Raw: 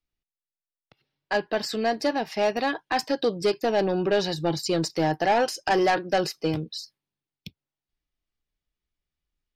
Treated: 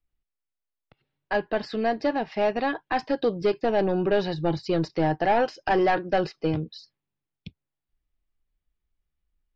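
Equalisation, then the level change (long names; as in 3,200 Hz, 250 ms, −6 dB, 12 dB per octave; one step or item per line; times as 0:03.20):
Gaussian smoothing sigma 2.2 samples
low-shelf EQ 67 Hz +11 dB
0.0 dB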